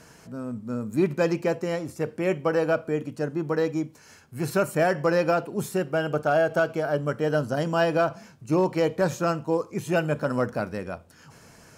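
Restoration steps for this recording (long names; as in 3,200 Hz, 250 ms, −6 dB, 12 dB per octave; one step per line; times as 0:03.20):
clipped peaks rebuilt −13.5 dBFS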